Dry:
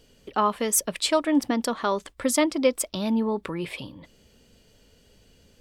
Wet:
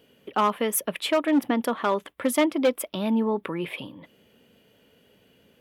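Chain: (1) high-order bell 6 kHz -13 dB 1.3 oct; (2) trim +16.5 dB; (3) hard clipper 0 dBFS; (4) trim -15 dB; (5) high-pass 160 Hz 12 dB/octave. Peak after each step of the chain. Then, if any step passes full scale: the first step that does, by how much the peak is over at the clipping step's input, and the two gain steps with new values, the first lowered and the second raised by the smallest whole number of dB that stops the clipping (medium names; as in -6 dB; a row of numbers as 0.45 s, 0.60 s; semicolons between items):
-9.5 dBFS, +7.0 dBFS, 0.0 dBFS, -15.0 dBFS, -10.5 dBFS; step 2, 7.0 dB; step 2 +9.5 dB, step 4 -8 dB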